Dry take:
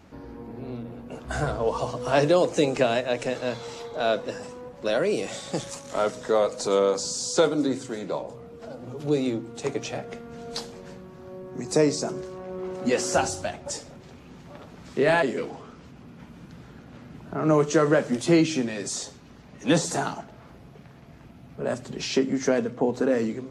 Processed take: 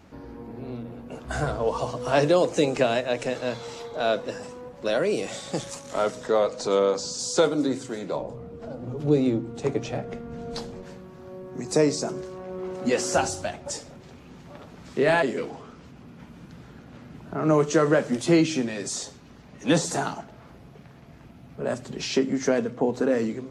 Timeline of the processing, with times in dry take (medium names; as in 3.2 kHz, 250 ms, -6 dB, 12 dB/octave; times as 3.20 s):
6.27–7.19 s: low-pass 6.3 kHz
8.16–10.83 s: tilt EQ -2 dB/octave